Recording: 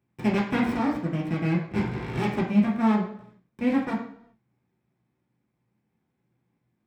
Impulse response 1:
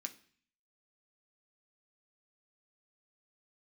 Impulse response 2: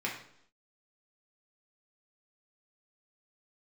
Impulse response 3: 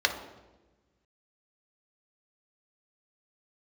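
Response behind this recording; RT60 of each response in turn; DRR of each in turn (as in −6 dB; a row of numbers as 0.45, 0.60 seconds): 2; 0.50, 0.70, 1.2 seconds; 4.5, −4.0, 3.5 decibels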